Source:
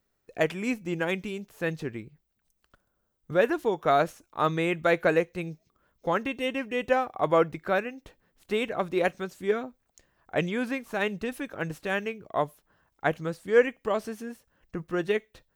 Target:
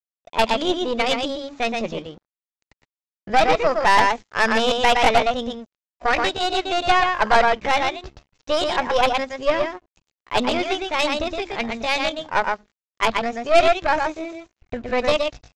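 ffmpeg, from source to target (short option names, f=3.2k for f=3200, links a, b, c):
-filter_complex "[0:a]bandreject=f=48.59:t=h:w=4,bandreject=f=97.18:t=h:w=4,bandreject=f=145.77:t=h:w=4,bandreject=f=194.36:t=h:w=4,bandreject=f=242.95:t=h:w=4,asubboost=boost=3.5:cutoff=84,asplit=2[a][b];[b]asoftclip=type=tanh:threshold=-22.5dB,volume=-9.5dB[c];[a][c]amix=inputs=2:normalize=0,aecho=1:1:119:0.631,aresample=11025,aeval=exprs='sgn(val(0))*max(abs(val(0))-0.00266,0)':c=same,aresample=44100,asetrate=62367,aresample=44100,atempo=0.707107,aeval=exprs='0.398*(cos(1*acos(clip(val(0)/0.398,-1,1)))-cos(1*PI/2))+0.0316*(cos(5*acos(clip(val(0)/0.398,-1,1)))-cos(5*PI/2))+0.0708*(cos(6*acos(clip(val(0)/0.398,-1,1)))-cos(6*PI/2))':c=same,volume=3dB"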